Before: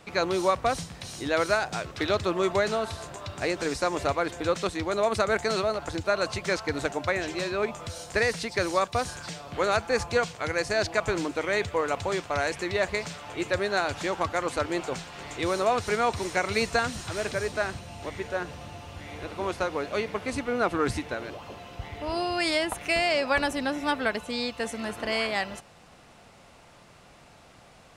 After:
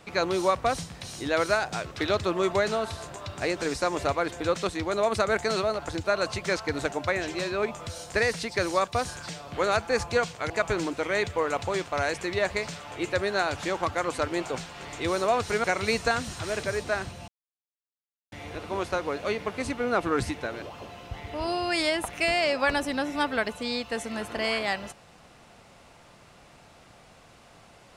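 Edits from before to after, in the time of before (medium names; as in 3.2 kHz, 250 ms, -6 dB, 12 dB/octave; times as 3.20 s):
10.50–10.88 s: delete
16.02–16.32 s: delete
17.96–19.00 s: mute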